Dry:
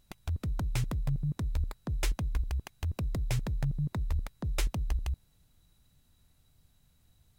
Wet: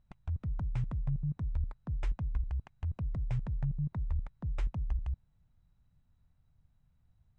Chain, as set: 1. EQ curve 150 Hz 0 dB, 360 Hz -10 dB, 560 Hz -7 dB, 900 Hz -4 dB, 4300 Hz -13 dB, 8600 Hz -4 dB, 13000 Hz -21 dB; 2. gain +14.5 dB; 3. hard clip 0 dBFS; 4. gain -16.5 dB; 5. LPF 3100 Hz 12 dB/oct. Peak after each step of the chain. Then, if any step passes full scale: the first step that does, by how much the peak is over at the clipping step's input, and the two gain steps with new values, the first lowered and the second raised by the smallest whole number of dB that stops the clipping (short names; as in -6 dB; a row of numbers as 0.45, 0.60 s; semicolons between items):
-20.0, -5.5, -5.5, -22.0, -22.0 dBFS; no overload